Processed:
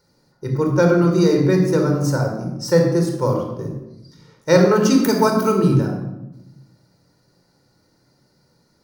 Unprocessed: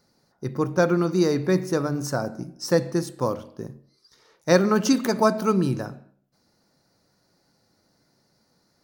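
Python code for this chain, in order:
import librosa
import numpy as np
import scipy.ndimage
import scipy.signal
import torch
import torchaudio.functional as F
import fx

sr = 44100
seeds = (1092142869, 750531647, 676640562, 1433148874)

y = fx.high_shelf(x, sr, hz=9900.0, db=11.5, at=(5.04, 5.52))
y = fx.room_shoebox(y, sr, seeds[0], volume_m3=3400.0, walls='furnished', distance_m=4.6)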